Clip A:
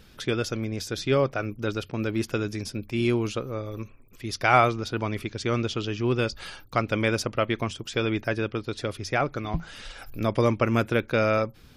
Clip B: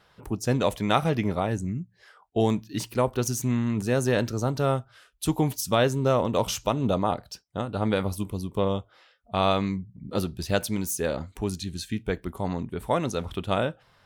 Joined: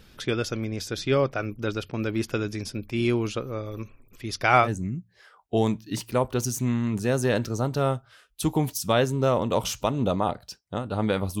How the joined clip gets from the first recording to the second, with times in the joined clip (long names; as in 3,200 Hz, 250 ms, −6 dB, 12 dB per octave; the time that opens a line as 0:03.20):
clip A
0:04.24–0:04.69: single-tap delay 316 ms −22 dB
0:04.65: continue with clip B from 0:01.48, crossfade 0.08 s